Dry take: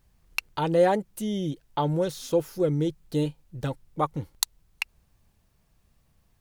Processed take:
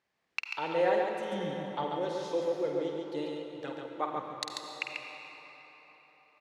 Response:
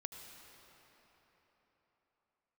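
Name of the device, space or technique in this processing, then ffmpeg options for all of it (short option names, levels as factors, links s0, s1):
station announcement: -filter_complex "[0:a]asettb=1/sr,asplit=3[s0][s1][s2];[s0]atrim=end=1.324[s3];[s1]atrim=start=1.32:end=1.84,asetpts=PTS-STARTPTS,afade=t=in:d=0.004:c=qsin,afade=t=out:st=0.516:d=0.004:c=qsin,lowshelf=f=250:t=q:w=1.5:g=8[s4];[s2]atrim=start=1.836[s5];[s3][s4]acrossfade=d=0.004:c1=hsin:c2=qsin[s6];[s6][s5]acrossfade=d=0.004:c1=qsin:c2=hsin,highpass=370,lowpass=4800,equalizer=f=2000:t=o:w=0.56:g=5.5,aecho=1:1:49.56|139.9:0.398|0.631[s7];[1:a]atrim=start_sample=2205[s8];[s7][s8]afir=irnorm=-1:irlink=0,volume=0.708"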